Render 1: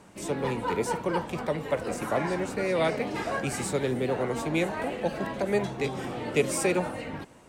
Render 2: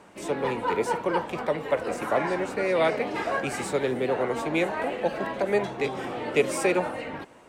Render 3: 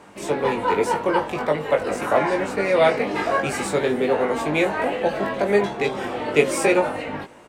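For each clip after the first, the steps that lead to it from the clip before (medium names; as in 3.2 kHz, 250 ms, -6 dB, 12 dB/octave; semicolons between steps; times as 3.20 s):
tone controls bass -9 dB, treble -7 dB; trim +3.5 dB
doubling 20 ms -4 dB; trim +4 dB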